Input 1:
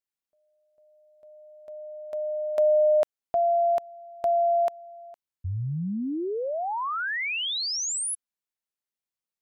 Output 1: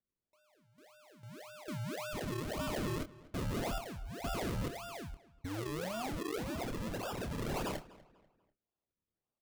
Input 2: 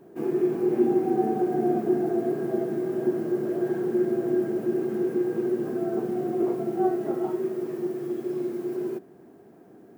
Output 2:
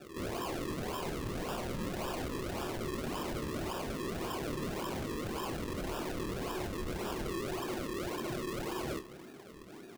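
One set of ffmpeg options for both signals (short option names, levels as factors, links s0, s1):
-filter_complex "[0:a]highpass=53,aemphasis=mode=production:type=cd,alimiter=limit=0.0708:level=0:latency=1:release=50,aresample=11025,aeval=exprs='0.0224*(abs(mod(val(0)/0.0224+3,4)-2)-1)':c=same,aresample=44100,acrusher=samples=41:mix=1:aa=0.000001:lfo=1:lforange=41:lforate=1.8,asplit=2[s0][s1];[s1]adelay=27,volume=0.355[s2];[s0][s2]amix=inputs=2:normalize=0,asplit=2[s3][s4];[s4]adelay=245,lowpass=f=3700:p=1,volume=0.106,asplit=2[s5][s6];[s6]adelay=245,lowpass=f=3700:p=1,volume=0.35,asplit=2[s7][s8];[s8]adelay=245,lowpass=f=3700:p=1,volume=0.35[s9];[s3][s5][s7][s9]amix=inputs=4:normalize=0"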